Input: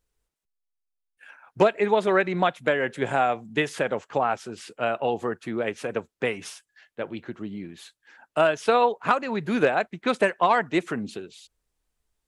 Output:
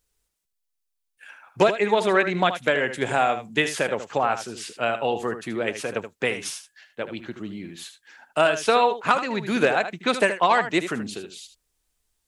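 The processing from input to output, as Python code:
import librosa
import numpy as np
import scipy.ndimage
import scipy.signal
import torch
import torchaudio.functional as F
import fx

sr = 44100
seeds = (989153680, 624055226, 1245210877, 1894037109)

p1 = fx.high_shelf(x, sr, hz=2600.0, db=9.0)
y = p1 + fx.echo_single(p1, sr, ms=77, db=-10.5, dry=0)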